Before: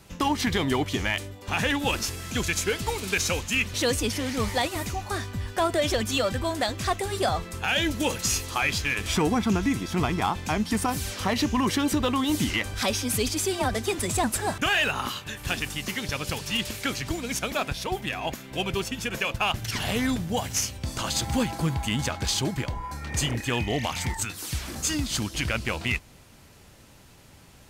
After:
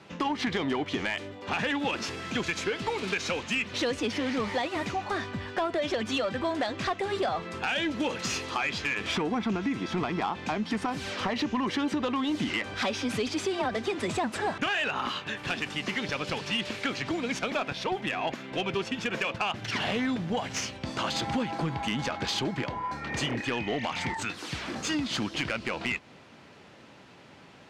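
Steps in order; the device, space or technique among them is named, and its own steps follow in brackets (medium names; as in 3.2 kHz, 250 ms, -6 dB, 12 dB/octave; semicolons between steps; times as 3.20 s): AM radio (band-pass 190–3400 Hz; compression, threshold -28 dBFS, peak gain reduction 8.5 dB; saturation -24 dBFS, distortion -18 dB); trim +4 dB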